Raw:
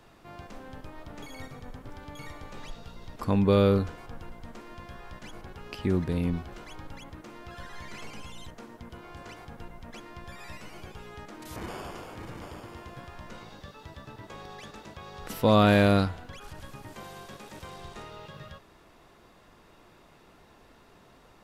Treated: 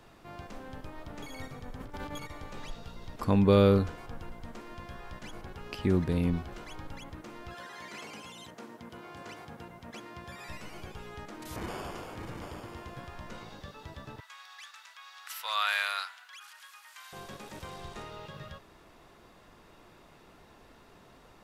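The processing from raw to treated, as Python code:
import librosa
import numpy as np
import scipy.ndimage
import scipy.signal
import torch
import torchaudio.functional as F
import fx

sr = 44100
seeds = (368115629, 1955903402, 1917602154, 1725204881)

y = fx.over_compress(x, sr, threshold_db=-44.0, ratio=-0.5, at=(1.79, 2.29), fade=0.02)
y = fx.highpass(y, sr, hz=fx.line((7.53, 250.0), (10.48, 74.0)), slope=12, at=(7.53, 10.48), fade=0.02)
y = fx.highpass(y, sr, hz=1200.0, slope=24, at=(14.2, 17.13))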